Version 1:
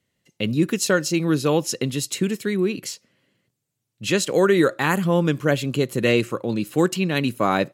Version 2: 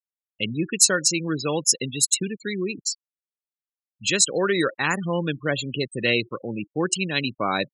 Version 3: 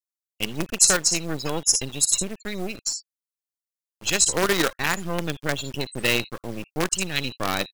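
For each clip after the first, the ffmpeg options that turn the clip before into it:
ffmpeg -i in.wav -af "aeval=exprs='val(0)+0.00355*sin(2*PI*8700*n/s)':channel_layout=same,afftfilt=real='re*gte(hypot(re,im),0.0562)':imag='im*gte(hypot(re,im),0.0562)':win_size=1024:overlap=0.75,crystalizer=i=6.5:c=0,volume=-6.5dB" out.wav
ffmpeg -i in.wav -filter_complex "[0:a]acrossover=split=3900[link_01][link_02];[link_01]acrusher=bits=4:dc=4:mix=0:aa=0.000001[link_03];[link_02]aecho=1:1:58|78:0.531|0.224[link_04];[link_03][link_04]amix=inputs=2:normalize=0" out.wav

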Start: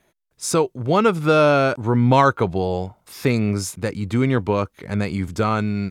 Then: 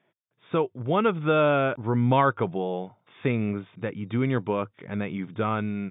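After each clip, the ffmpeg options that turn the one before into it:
ffmpeg -i in.wav -af "afftfilt=real='re*between(b*sr/4096,100,3700)':imag='im*between(b*sr/4096,100,3700)':win_size=4096:overlap=0.75,volume=-6dB" out.wav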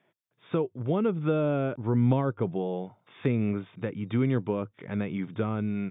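ffmpeg -i in.wav -filter_complex "[0:a]acrossover=split=490[link_01][link_02];[link_02]acompressor=threshold=-38dB:ratio=4[link_03];[link_01][link_03]amix=inputs=2:normalize=0" out.wav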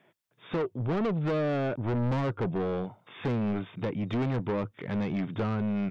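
ffmpeg -i in.wav -af "asoftclip=type=tanh:threshold=-31dB,volume=5.5dB" out.wav

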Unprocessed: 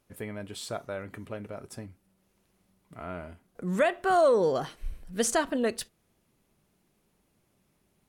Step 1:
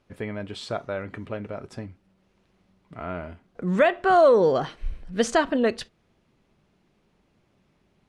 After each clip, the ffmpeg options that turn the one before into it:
ffmpeg -i in.wav -af "lowpass=4300,volume=5.5dB" out.wav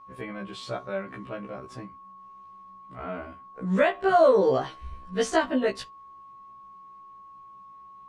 ffmpeg -i in.wav -af "aeval=exprs='val(0)+0.00398*sin(2*PI*1100*n/s)':channel_layout=same,afftfilt=real='re*1.73*eq(mod(b,3),0)':imag='im*1.73*eq(mod(b,3),0)':win_size=2048:overlap=0.75" out.wav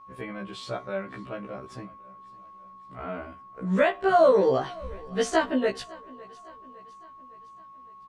ffmpeg -i in.wav -af "aecho=1:1:558|1116|1674|2232:0.075|0.039|0.0203|0.0105" out.wav

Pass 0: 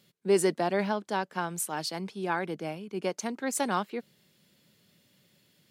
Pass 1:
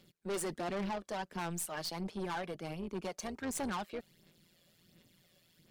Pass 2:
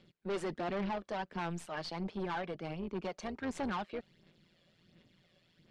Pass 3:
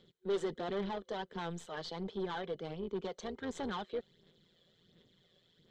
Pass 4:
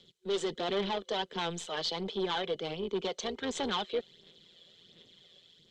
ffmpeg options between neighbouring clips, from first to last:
ffmpeg -i in.wav -af "aphaser=in_gain=1:out_gain=1:delay=1.8:decay=0.52:speed=1.4:type=sinusoidal,tremolo=f=170:d=0.71,aeval=exprs='(tanh(44.7*val(0)+0.2)-tanh(0.2))/44.7':channel_layout=same" out.wav
ffmpeg -i in.wav -af "lowpass=3800,volume=1dB" out.wav
ffmpeg -i in.wav -af "superequalizer=7b=2.24:12b=0.562:13b=2.24:15b=1.41:16b=0.398,volume=-3dB" out.wav
ffmpeg -i in.wav -filter_complex "[0:a]lowpass=7200,acrossover=split=260|3600[link_01][link_02][link_03];[link_02]dynaudnorm=framelen=200:gausssize=5:maxgain=6dB[link_04];[link_01][link_04][link_03]amix=inputs=3:normalize=0,aexciter=amount=2.7:drive=7:freq=2400" out.wav

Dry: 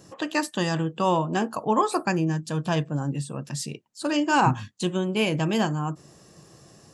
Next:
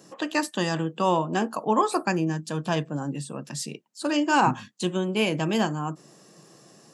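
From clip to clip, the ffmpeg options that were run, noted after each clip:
ffmpeg -i in.wav -af "highpass=frequency=160:width=0.5412,highpass=frequency=160:width=1.3066" out.wav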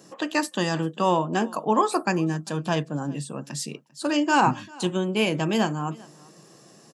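ffmpeg -i in.wav -af "aecho=1:1:396:0.0631,volume=1dB" out.wav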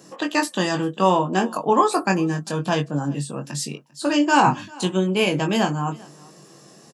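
ffmpeg -i in.wav -filter_complex "[0:a]asplit=2[link_01][link_02];[link_02]adelay=21,volume=-5.5dB[link_03];[link_01][link_03]amix=inputs=2:normalize=0,volume=2.5dB" out.wav

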